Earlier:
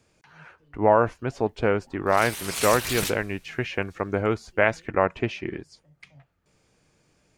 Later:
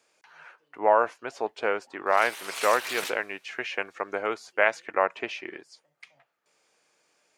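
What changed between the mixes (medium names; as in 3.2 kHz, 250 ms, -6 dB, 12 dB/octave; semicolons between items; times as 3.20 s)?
background: add treble shelf 4.4 kHz -10 dB; master: add high-pass 560 Hz 12 dB/octave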